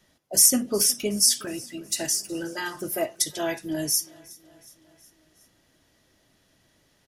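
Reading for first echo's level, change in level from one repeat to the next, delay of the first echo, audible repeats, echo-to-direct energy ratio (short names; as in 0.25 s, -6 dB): -23.0 dB, -4.5 dB, 0.367 s, 3, -21.0 dB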